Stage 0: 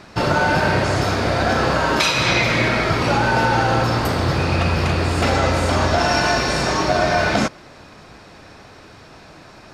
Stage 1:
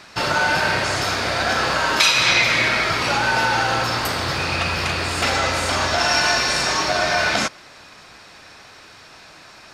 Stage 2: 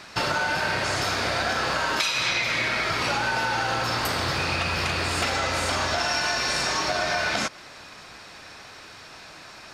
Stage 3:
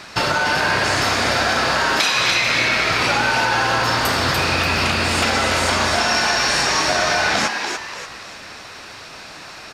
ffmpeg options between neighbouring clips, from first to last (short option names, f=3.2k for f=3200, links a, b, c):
-af "tiltshelf=f=830:g=-7,volume=-2.5dB"
-af "acompressor=threshold=-22dB:ratio=6"
-filter_complex "[0:a]asplit=6[a][b][c][d][e][f];[b]adelay=291,afreqshift=140,volume=-5.5dB[g];[c]adelay=582,afreqshift=280,volume=-13.9dB[h];[d]adelay=873,afreqshift=420,volume=-22.3dB[i];[e]adelay=1164,afreqshift=560,volume=-30.7dB[j];[f]adelay=1455,afreqshift=700,volume=-39.1dB[k];[a][g][h][i][j][k]amix=inputs=6:normalize=0,volume=6dB"